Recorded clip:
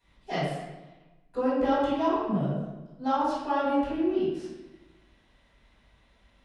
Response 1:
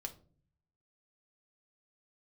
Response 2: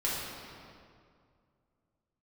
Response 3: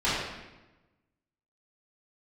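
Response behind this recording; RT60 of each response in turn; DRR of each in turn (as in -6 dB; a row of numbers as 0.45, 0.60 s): 3; 0.45, 2.2, 1.1 s; 4.0, -7.5, -11.0 dB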